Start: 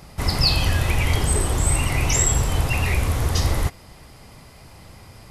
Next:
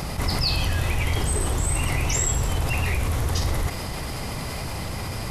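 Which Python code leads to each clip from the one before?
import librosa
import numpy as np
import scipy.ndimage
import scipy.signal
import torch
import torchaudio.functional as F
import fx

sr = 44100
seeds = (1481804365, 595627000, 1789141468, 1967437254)

y = fx.env_flatten(x, sr, amount_pct=70)
y = F.gain(torch.from_numpy(y), -6.0).numpy()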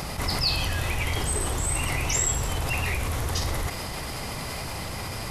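y = fx.low_shelf(x, sr, hz=400.0, db=-5.0)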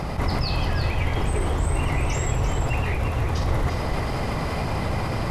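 y = fx.lowpass(x, sr, hz=1100.0, slope=6)
y = fx.rider(y, sr, range_db=3, speed_s=0.5)
y = y + 10.0 ** (-7.5 / 20.0) * np.pad(y, (int(343 * sr / 1000.0), 0))[:len(y)]
y = F.gain(torch.from_numpy(y), 6.0).numpy()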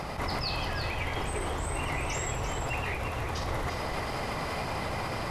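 y = fx.low_shelf(x, sr, hz=330.0, db=-10.0)
y = F.gain(torch.from_numpy(y), -2.5).numpy()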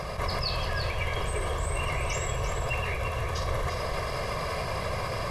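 y = x + 0.69 * np.pad(x, (int(1.8 * sr / 1000.0), 0))[:len(x)]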